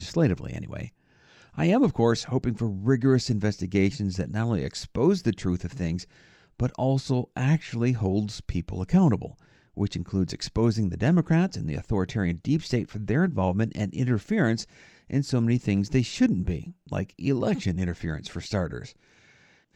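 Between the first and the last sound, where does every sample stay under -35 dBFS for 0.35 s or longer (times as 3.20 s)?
0.87–1.58 s
6.03–6.60 s
9.31–9.77 s
14.64–15.10 s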